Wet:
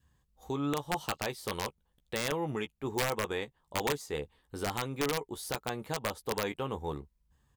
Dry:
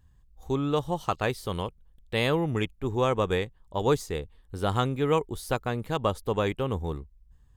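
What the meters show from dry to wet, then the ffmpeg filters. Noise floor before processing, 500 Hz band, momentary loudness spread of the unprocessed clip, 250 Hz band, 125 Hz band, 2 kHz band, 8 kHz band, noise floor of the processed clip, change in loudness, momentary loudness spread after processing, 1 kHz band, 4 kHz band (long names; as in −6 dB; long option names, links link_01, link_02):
−60 dBFS, −7.5 dB, 9 LU, −7.0 dB, −10.5 dB, −2.5 dB, +4.0 dB, −75 dBFS, −6.5 dB, 7 LU, −6.0 dB, −2.5 dB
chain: -filter_complex "[0:a]alimiter=limit=-21dB:level=0:latency=1:release=342,highpass=frequency=240:poles=1,adynamicequalizer=threshold=0.00398:dfrequency=870:dqfactor=3.3:tfrequency=870:tqfactor=3.3:attack=5:release=100:ratio=0.375:range=2:mode=boostabove:tftype=bell,asplit=2[link_01][link_02];[link_02]adelay=14,volume=-8.5dB[link_03];[link_01][link_03]amix=inputs=2:normalize=0,aeval=exprs='(mod(13.3*val(0)+1,2)-1)/13.3':channel_layout=same"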